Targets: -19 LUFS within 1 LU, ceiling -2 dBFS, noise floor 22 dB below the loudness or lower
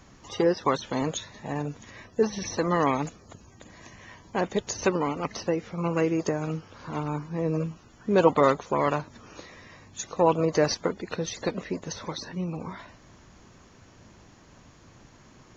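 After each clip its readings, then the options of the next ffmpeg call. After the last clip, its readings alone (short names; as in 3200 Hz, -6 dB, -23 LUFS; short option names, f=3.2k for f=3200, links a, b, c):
loudness -27.5 LUFS; peak -6.5 dBFS; loudness target -19.0 LUFS
-> -af "volume=8.5dB,alimiter=limit=-2dB:level=0:latency=1"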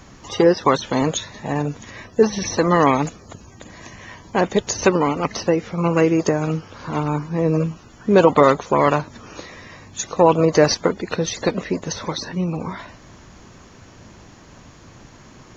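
loudness -19.5 LUFS; peak -2.0 dBFS; noise floor -46 dBFS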